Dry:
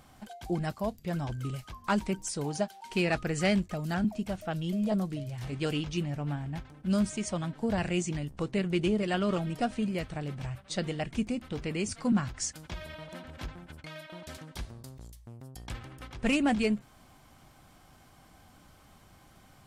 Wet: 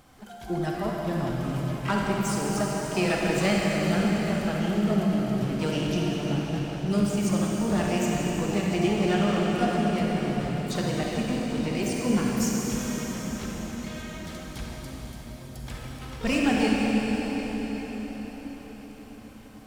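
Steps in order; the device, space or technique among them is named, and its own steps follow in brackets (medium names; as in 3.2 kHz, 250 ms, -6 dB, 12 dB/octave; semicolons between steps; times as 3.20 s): shimmer-style reverb (harmony voices +12 st -11 dB; reverberation RT60 5.7 s, pre-delay 35 ms, DRR -3.5 dB)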